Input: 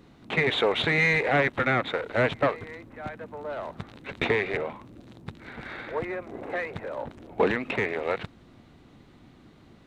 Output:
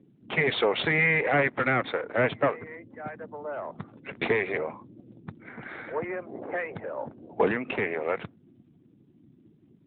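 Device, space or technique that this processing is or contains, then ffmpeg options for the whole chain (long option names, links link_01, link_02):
mobile call with aggressive noise cancelling: -filter_complex "[0:a]asettb=1/sr,asplit=3[link_01][link_02][link_03];[link_01]atrim=end=6.394[link_04];[link_02]atrim=start=6.39:end=7.82,asetpts=PTS-STARTPTS,afade=type=in:duration=0.004:curve=qsin,afade=type=out:start_time=1.426:duration=0.004:curve=qsin,adynamicequalizer=threshold=0.00708:dfrequency=2000:dqfactor=4.3:tfrequency=2000:tqfactor=4.3:attack=5:release=100:ratio=0.375:range=3:mode=cutabove:tftype=bell[link_05];[link_03]atrim=start=7.816[link_06];[link_04][link_05]acrossfade=duration=0.004:curve1=hsin:curve2=qsin[link_07];[link_07][link_06]acrossfade=duration=0.004:curve1=qsin:curve2=hsin,highpass=100,afftdn=noise_reduction=20:noise_floor=-47" -ar 8000 -c:a libopencore_amrnb -b:a 12200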